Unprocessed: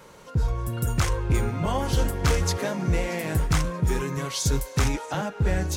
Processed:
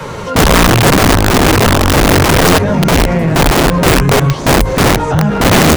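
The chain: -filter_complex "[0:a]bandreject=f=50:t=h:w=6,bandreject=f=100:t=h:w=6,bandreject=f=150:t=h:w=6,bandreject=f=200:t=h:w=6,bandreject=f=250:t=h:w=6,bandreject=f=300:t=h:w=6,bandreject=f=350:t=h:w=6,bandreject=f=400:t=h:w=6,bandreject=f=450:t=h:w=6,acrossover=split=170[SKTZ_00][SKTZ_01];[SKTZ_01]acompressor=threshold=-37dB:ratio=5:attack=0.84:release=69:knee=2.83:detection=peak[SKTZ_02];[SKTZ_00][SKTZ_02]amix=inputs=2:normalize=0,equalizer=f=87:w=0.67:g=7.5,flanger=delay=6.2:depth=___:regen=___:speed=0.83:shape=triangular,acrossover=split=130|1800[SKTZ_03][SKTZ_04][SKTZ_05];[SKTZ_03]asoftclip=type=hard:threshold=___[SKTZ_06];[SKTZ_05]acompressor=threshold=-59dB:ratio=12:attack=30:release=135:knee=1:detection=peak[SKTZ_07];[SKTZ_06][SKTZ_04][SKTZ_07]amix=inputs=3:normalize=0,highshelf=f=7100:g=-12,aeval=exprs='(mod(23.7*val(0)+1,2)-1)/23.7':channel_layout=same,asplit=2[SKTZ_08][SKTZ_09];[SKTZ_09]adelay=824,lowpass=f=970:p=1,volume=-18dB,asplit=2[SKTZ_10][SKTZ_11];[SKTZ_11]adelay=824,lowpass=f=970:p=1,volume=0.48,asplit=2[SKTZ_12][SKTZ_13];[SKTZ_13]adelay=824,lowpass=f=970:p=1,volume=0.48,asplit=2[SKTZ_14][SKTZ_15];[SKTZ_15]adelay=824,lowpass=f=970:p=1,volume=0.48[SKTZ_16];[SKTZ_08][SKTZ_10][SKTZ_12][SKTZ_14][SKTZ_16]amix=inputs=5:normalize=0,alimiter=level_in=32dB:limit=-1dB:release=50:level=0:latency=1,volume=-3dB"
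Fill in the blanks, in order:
9.9, 49, -30.5dB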